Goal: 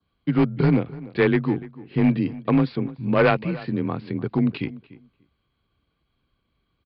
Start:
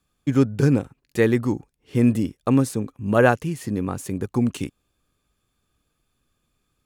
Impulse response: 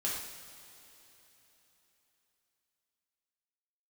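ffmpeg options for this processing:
-filter_complex "[0:a]afreqshift=27,aresample=11025,volume=12dB,asoftclip=hard,volume=-12dB,aresample=44100,adynamicequalizer=threshold=0.00708:dfrequency=2500:dqfactor=2:tfrequency=2500:tqfactor=2:attack=5:release=100:ratio=0.375:range=3:mode=boostabove:tftype=bell,asetrate=40440,aresample=44100,atempo=1.09051,asplit=2[link_01][link_02];[link_02]adelay=294,lowpass=frequency=2200:poles=1,volume=-18dB,asplit=2[link_03][link_04];[link_04]adelay=294,lowpass=frequency=2200:poles=1,volume=0.16[link_05];[link_01][link_03][link_05]amix=inputs=3:normalize=0"

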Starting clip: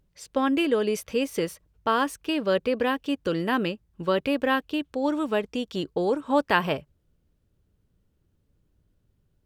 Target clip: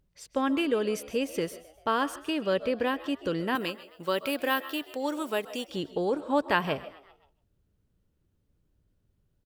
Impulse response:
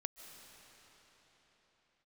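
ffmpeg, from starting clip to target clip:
-filter_complex "[0:a]asettb=1/sr,asplit=3[link_01][link_02][link_03];[link_01]atrim=end=3.554[link_04];[link_02]atrim=start=3.55:end=5.69,asetpts=PTS-STARTPTS,afade=type=in:duration=0.004:curve=qsin,afade=type=out:start_time=2.136:duration=0.004:curve=qsin,aemphasis=mode=production:type=bsi[link_05];[link_03]atrim=start=5.686[link_06];[link_04][link_05]acrossfade=duration=0.004:curve1=hsin:curve2=qsin[link_07];[link_07][link_06]acrossfade=duration=0.004:curve1=qsin:curve2=hsin,asplit=5[link_08][link_09][link_10][link_11][link_12];[link_09]adelay=131,afreqshift=71,volume=-20.5dB[link_13];[link_10]adelay=262,afreqshift=142,volume=-25.9dB[link_14];[link_11]adelay=393,afreqshift=213,volume=-31.2dB[link_15];[link_12]adelay=524,afreqshift=284,volume=-36.6dB[link_16];[link_08][link_13][link_14][link_15][link_16]amix=inputs=5:normalize=0[link_17];[1:a]atrim=start_sample=2205,afade=type=out:start_time=0.21:duration=0.01,atrim=end_sample=9702[link_18];[link_17][link_18]afir=irnorm=-1:irlink=0"

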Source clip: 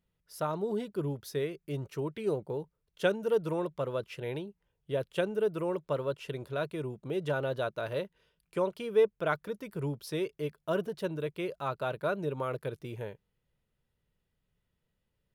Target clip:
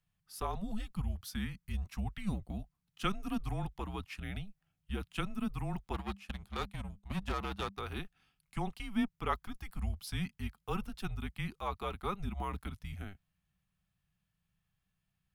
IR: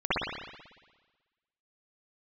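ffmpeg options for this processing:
-filter_complex "[0:a]asplit=3[link_01][link_02][link_03];[link_01]afade=type=out:start_time=5.93:duration=0.02[link_04];[link_02]aeval=exprs='0.0944*(cos(1*acos(clip(val(0)/0.0944,-1,1)))-cos(1*PI/2))+0.015*(cos(2*acos(clip(val(0)/0.0944,-1,1)))-cos(2*PI/2))+0.00841*(cos(7*acos(clip(val(0)/0.0944,-1,1)))-cos(7*PI/2))':channel_layout=same,afade=type=in:start_time=5.93:duration=0.02,afade=type=out:start_time=7.78:duration=0.02[link_05];[link_03]afade=type=in:start_time=7.78:duration=0.02[link_06];[link_04][link_05][link_06]amix=inputs=3:normalize=0,afreqshift=-200,equalizer=frequency=330:width_type=o:width=1.1:gain=-14"

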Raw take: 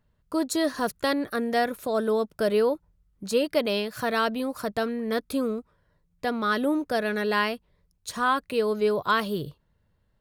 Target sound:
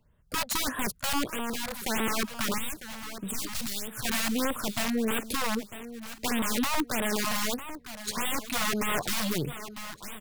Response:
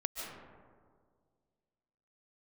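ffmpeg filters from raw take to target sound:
-filter_complex "[0:a]aeval=exprs='0.299*(cos(1*acos(clip(val(0)/0.299,-1,1)))-cos(1*PI/2))+0.00422*(cos(3*acos(clip(val(0)/0.299,-1,1)))-cos(3*PI/2))+0.0531*(cos(4*acos(clip(val(0)/0.299,-1,1)))-cos(4*PI/2))+0.00376*(cos(5*acos(clip(val(0)/0.299,-1,1)))-cos(5*PI/2))+0.00335*(cos(6*acos(clip(val(0)/0.299,-1,1)))-cos(6*PI/2))':channel_layout=same,acrossover=split=190[link_01][link_02];[link_02]aeval=exprs='(mod(15*val(0)+1,2)-1)/15':channel_layout=same[link_03];[link_01][link_03]amix=inputs=2:normalize=0,asettb=1/sr,asplit=3[link_04][link_05][link_06];[link_04]atrim=end=2.584[link_07];[link_05]atrim=start=2.58:end=4.05,asetpts=PTS-STARTPTS,afade=type=in:duration=0.004:curve=qsin,afade=type=out:start_time=1.466:duration=0.004:curve=qsin,acrossover=split=200|3000[link_08][link_09][link_10];[link_09]acompressor=threshold=-43dB:ratio=6[link_11];[link_08][link_11][link_10]amix=inputs=3:normalize=0[link_12];[link_06]atrim=start=4.046[link_13];[link_07][link_12]acrossfade=duration=0.004:curve1=hsin:curve2=qsin[link_14];[link_14][link_13]acrossfade=duration=0.004:curve1=qsin:curve2=hsin,asplit=2[link_15][link_16];[link_16]aecho=0:1:950|1900|2850:0.178|0.0533|0.016[link_17];[link_15][link_17]amix=inputs=2:normalize=0,alimiter=limit=-24dB:level=0:latency=1:release=13,asplit=3[link_18][link_19][link_20];[link_18]afade=type=out:start_time=1.29:duration=0.02[link_21];[link_19]acompressor=threshold=-36dB:ratio=2,afade=type=in:start_time=1.29:duration=0.02,afade=type=out:start_time=1.74:duration=0.02[link_22];[link_20]afade=type=in:start_time=1.74:duration=0.02[link_23];[link_21][link_22][link_23]amix=inputs=3:normalize=0,afftfilt=real='re*(1-between(b*sr/1024,310*pow(5500/310,0.5+0.5*sin(2*PI*1.6*pts/sr))/1.41,310*pow(5500/310,0.5+0.5*sin(2*PI*1.6*pts/sr))*1.41))':imag='im*(1-between(b*sr/1024,310*pow(5500/310,0.5+0.5*sin(2*PI*1.6*pts/sr))/1.41,310*pow(5500/310,0.5+0.5*sin(2*PI*1.6*pts/sr))*1.41))':win_size=1024:overlap=0.75,volume=3dB"

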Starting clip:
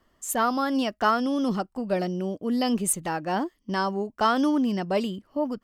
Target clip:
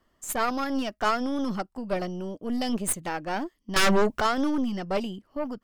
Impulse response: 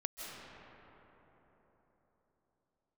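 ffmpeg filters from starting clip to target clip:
-filter_complex "[0:a]asettb=1/sr,asplit=3[link_01][link_02][link_03];[link_01]atrim=end=3.764[link_04];[link_02]atrim=start=3.76:end=4.21,asetpts=PTS-STARTPTS,afade=type=in:duration=0.004:curve=qsin,afade=type=out:start_time=0.446:duration=0.004:curve=qsin,aeval=exprs='0.188*sin(PI/2*3.98*val(0)/0.188)':channel_layout=same[link_05];[link_03]atrim=start=4.206[link_06];[link_04][link_05]acrossfade=duration=0.004:curve1=hsin:curve2=qsin[link_07];[link_07][link_06]acrossfade=duration=0.004:curve1=qsin:curve2=hsin,aeval=exprs='0.316*(cos(1*acos(clip(val(0)/0.316,-1,1)))-cos(1*PI/2))+0.0355*(cos(6*acos(clip(val(0)/0.316,-1,1)))-cos(6*PI/2))':channel_layout=same,volume=-3dB"

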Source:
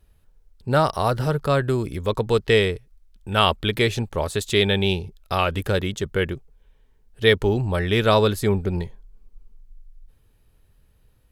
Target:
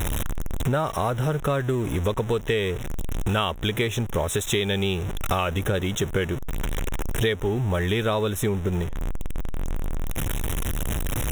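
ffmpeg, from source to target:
ffmpeg -i in.wav -af "aeval=exprs='val(0)+0.5*0.0398*sgn(val(0))':channel_layout=same,acompressor=threshold=-31dB:ratio=6,asuperstop=centerf=4600:order=8:qfactor=2.8,volume=9dB" out.wav

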